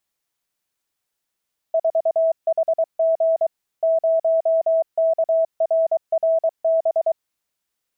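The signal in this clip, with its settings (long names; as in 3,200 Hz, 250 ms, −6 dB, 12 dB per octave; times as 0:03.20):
Morse code "4HG 0KRRB" 23 words per minute 652 Hz −14.5 dBFS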